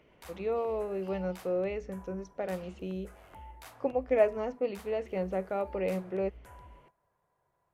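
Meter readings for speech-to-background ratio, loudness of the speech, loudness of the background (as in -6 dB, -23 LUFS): 19.5 dB, -33.5 LUFS, -53.0 LUFS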